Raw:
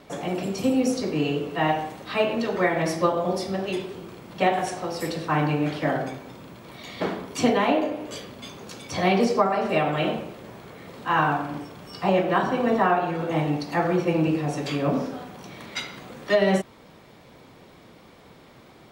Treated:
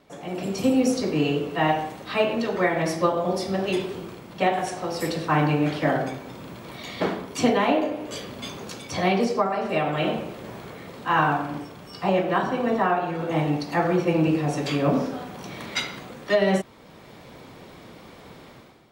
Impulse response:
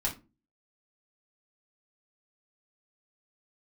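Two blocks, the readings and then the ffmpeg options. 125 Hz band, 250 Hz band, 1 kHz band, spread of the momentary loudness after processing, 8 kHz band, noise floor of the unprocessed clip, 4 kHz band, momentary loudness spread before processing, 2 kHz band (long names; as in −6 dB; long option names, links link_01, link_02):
+1.0 dB, +0.5 dB, 0.0 dB, 15 LU, +1.0 dB, −51 dBFS, +1.0 dB, 18 LU, +0.5 dB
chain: -af "dynaudnorm=framelen=110:gausssize=7:maxgain=13dB,volume=-8dB"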